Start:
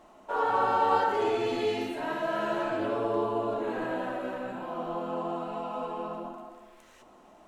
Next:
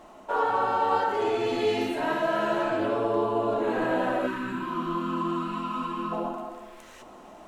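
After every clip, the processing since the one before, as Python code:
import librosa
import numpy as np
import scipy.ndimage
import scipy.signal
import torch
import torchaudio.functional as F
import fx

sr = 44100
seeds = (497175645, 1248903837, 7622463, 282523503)

y = fx.spec_box(x, sr, start_s=4.27, length_s=1.85, low_hz=400.0, high_hz=930.0, gain_db=-20)
y = fx.rider(y, sr, range_db=4, speed_s=0.5)
y = y * librosa.db_to_amplitude(4.0)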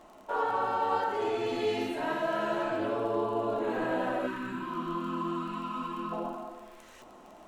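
y = fx.dmg_crackle(x, sr, seeds[0], per_s=38.0, level_db=-40.0)
y = y * librosa.db_to_amplitude(-4.5)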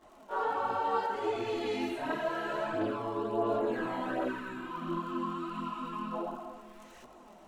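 y = fx.chorus_voices(x, sr, voices=2, hz=0.71, base_ms=21, depth_ms=2.7, mix_pct=70)
y = y + 10.0 ** (-21.5 / 20.0) * np.pad(y, (int(695 * sr / 1000.0), 0))[:len(y)]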